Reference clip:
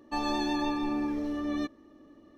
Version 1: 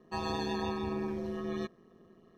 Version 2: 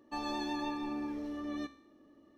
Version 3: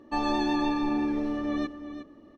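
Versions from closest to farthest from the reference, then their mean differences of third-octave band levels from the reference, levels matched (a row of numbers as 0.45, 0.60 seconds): 2, 3, 1; 1.0, 2.5, 4.5 decibels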